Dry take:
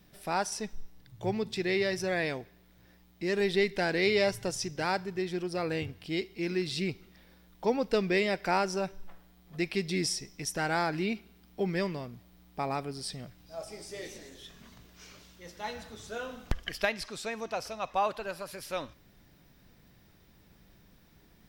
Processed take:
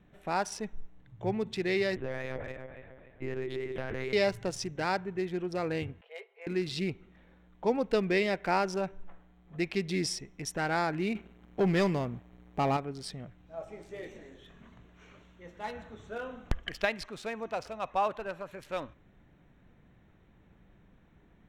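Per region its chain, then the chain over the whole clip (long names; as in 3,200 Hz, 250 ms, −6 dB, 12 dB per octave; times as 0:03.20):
0:01.96–0:04.13: feedback delay that plays each chunk backwards 140 ms, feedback 64%, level −9.5 dB + downward compressor 10 to 1, threshold −31 dBFS + one-pitch LPC vocoder at 8 kHz 130 Hz
0:06.01–0:06.47: Chebyshev high-pass filter 410 Hz, order 10 + head-to-tape spacing loss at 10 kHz 32 dB + comb filter 6 ms
0:11.15–0:12.77: leveller curve on the samples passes 2 + upward compression, threshold −48 dBFS
whole clip: adaptive Wiener filter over 9 samples; high-shelf EQ 7,900 Hz −6 dB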